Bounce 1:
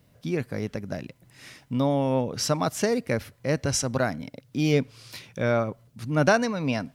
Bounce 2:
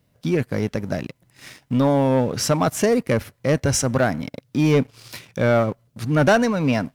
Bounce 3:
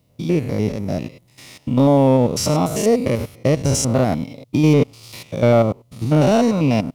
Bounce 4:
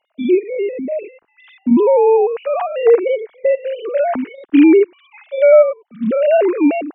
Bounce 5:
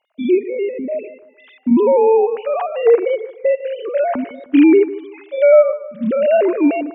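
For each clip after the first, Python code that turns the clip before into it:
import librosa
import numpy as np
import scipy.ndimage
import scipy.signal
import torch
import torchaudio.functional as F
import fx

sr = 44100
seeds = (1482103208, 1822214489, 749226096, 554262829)

y1 = fx.dynamic_eq(x, sr, hz=4400.0, q=1.2, threshold_db=-46.0, ratio=4.0, max_db=-6)
y1 = fx.leveller(y1, sr, passes=2)
y2 = fx.spec_steps(y1, sr, hold_ms=100)
y2 = fx.peak_eq(y2, sr, hz=1600.0, db=-14.5, octaves=0.4)
y2 = y2 * librosa.db_to_amplitude(5.0)
y3 = fx.sine_speech(y2, sr)
y3 = y3 * librosa.db_to_amplitude(3.0)
y4 = fx.echo_bbd(y3, sr, ms=153, stages=2048, feedback_pct=37, wet_db=-16.0)
y4 = y4 * librosa.db_to_amplitude(-1.0)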